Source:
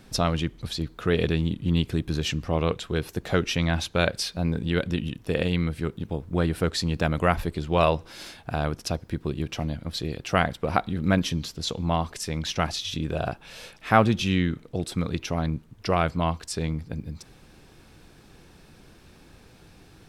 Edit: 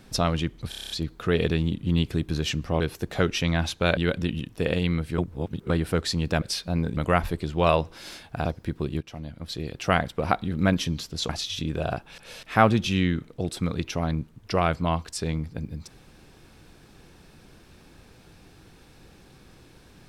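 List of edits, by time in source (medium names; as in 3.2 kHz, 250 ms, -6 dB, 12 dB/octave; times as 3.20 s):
0.69 s: stutter 0.03 s, 8 plays
2.59–2.94 s: delete
4.11–4.66 s: move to 7.11 s
5.87–6.39 s: reverse
8.59–8.90 s: delete
9.46–10.30 s: fade in, from -13.5 dB
11.74–12.64 s: delete
13.53–13.78 s: reverse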